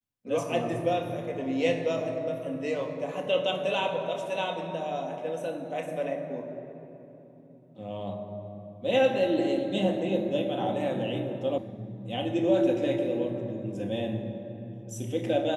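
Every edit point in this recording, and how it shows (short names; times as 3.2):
11.58 sound cut off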